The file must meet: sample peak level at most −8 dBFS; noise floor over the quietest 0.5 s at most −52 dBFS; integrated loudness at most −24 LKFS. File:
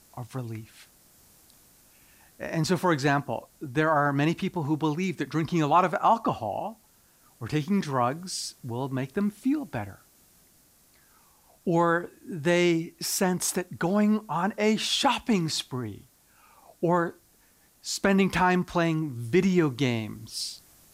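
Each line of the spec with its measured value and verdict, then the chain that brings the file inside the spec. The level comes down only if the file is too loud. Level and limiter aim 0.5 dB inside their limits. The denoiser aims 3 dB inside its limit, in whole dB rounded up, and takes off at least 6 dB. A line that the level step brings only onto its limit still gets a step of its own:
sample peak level −10.0 dBFS: in spec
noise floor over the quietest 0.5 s −61 dBFS: in spec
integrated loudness −26.5 LKFS: in spec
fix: no processing needed

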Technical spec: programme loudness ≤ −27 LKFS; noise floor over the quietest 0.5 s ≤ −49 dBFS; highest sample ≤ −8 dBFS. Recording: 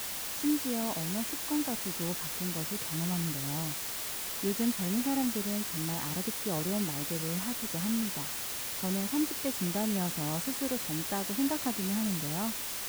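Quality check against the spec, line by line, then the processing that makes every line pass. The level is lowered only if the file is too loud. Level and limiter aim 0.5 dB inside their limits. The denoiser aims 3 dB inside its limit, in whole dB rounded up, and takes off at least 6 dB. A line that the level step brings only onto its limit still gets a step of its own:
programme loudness −31.5 LKFS: in spec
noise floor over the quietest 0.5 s −37 dBFS: out of spec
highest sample −18.5 dBFS: in spec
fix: broadband denoise 15 dB, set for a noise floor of −37 dBFS

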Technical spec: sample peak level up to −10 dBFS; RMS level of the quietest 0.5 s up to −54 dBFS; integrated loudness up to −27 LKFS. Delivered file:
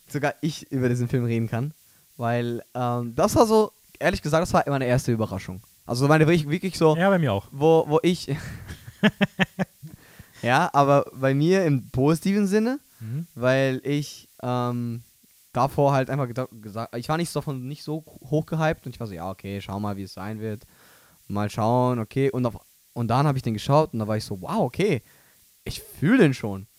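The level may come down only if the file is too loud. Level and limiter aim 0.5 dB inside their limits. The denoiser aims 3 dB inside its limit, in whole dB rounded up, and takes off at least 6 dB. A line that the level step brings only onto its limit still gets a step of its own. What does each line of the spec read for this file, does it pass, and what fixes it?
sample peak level −4.0 dBFS: out of spec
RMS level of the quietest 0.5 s −58 dBFS: in spec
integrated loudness −24.0 LKFS: out of spec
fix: level −3.5 dB
brickwall limiter −10.5 dBFS

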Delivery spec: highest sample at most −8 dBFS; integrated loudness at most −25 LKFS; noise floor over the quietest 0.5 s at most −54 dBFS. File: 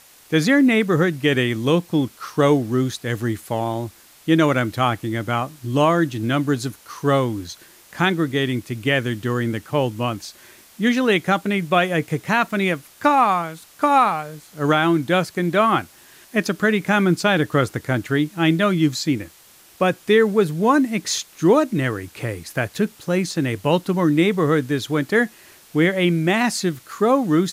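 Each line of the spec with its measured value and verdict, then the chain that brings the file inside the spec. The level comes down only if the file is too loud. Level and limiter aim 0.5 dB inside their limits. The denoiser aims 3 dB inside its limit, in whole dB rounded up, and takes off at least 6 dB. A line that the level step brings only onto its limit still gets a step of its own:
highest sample −5.5 dBFS: out of spec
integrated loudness −20.0 LKFS: out of spec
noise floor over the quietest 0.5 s −50 dBFS: out of spec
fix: level −5.5 dB

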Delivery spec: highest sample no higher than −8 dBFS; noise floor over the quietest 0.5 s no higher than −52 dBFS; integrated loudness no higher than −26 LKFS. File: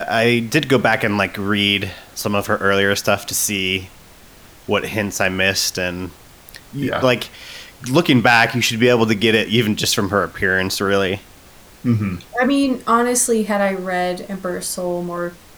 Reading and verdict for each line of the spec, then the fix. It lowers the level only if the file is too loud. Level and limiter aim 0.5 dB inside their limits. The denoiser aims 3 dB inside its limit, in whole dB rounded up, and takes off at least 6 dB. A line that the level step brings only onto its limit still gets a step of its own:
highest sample −2.5 dBFS: out of spec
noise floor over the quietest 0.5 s −44 dBFS: out of spec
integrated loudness −18.0 LKFS: out of spec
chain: level −8.5 dB

